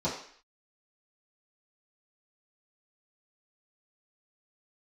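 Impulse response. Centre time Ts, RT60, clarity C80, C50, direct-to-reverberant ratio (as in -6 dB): 35 ms, 0.55 s, 9.0 dB, 5.5 dB, -11.0 dB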